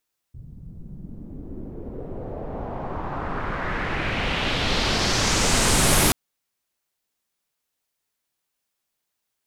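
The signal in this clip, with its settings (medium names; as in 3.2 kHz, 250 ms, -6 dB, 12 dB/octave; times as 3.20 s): swept filtered noise pink, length 5.78 s lowpass, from 120 Hz, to 12 kHz, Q 1.9, exponential, gain ramp +21 dB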